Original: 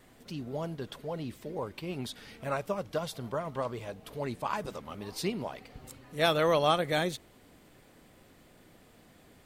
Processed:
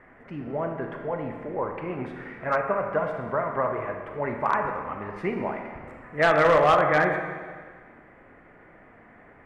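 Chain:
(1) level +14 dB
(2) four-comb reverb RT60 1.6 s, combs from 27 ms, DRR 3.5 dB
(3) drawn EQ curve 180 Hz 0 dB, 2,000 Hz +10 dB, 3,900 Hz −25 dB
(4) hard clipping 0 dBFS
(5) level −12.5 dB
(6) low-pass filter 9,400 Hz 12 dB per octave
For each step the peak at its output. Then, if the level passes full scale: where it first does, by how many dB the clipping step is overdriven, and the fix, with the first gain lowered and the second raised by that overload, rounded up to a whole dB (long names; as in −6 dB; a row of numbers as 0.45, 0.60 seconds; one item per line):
+2.0, +3.0, +8.0, 0.0, −12.5, −12.0 dBFS
step 1, 8.0 dB
step 1 +6 dB, step 5 −4.5 dB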